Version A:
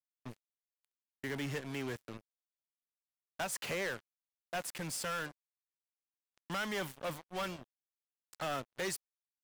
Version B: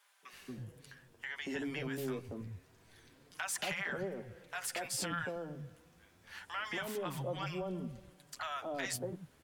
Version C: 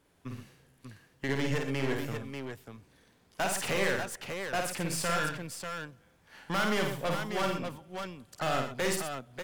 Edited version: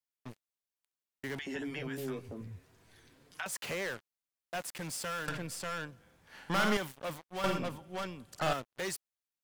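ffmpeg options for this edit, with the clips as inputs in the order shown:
-filter_complex "[2:a]asplit=2[s0][s1];[0:a]asplit=4[s2][s3][s4][s5];[s2]atrim=end=1.392[s6];[1:a]atrim=start=1.388:end=3.462[s7];[s3]atrim=start=3.458:end=5.282[s8];[s0]atrim=start=5.278:end=6.772[s9];[s4]atrim=start=6.768:end=7.442[s10];[s1]atrim=start=7.438:end=8.532[s11];[s5]atrim=start=8.528[s12];[s6][s7]acrossfade=d=0.004:c1=hsin:c2=hsin[s13];[s13][s8]acrossfade=d=0.004:c1=hsin:c2=hsin[s14];[s14][s9]acrossfade=d=0.004:c1=hsin:c2=hsin[s15];[s15][s10]acrossfade=d=0.004:c1=hsin:c2=hsin[s16];[s16][s11]acrossfade=d=0.004:c1=hsin:c2=hsin[s17];[s17][s12]acrossfade=d=0.004:c1=hsin:c2=hsin"

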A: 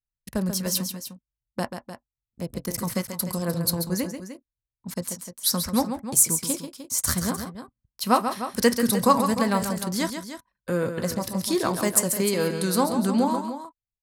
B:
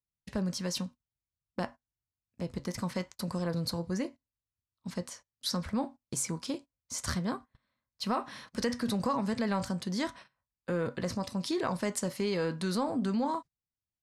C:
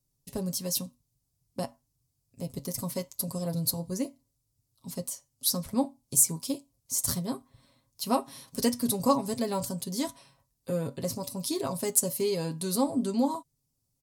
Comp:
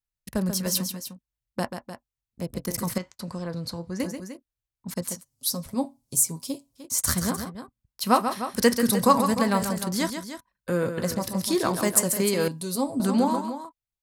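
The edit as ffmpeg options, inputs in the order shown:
-filter_complex "[2:a]asplit=2[s0][s1];[0:a]asplit=4[s2][s3][s4][s5];[s2]atrim=end=2.982[s6];[1:a]atrim=start=2.978:end=4.002[s7];[s3]atrim=start=3.998:end=5.25[s8];[s0]atrim=start=5.15:end=6.85[s9];[s4]atrim=start=6.75:end=12.482[s10];[s1]atrim=start=12.478:end=13.002[s11];[s5]atrim=start=12.998[s12];[s6][s7]acrossfade=d=0.004:c1=hsin:c2=hsin[s13];[s13][s8]acrossfade=d=0.004:c1=hsin:c2=hsin[s14];[s14][s9]acrossfade=d=0.1:c1=tri:c2=tri[s15];[s15][s10]acrossfade=d=0.1:c1=tri:c2=tri[s16];[s16][s11]acrossfade=d=0.004:c1=hsin:c2=hsin[s17];[s17][s12]acrossfade=d=0.004:c1=hsin:c2=hsin"

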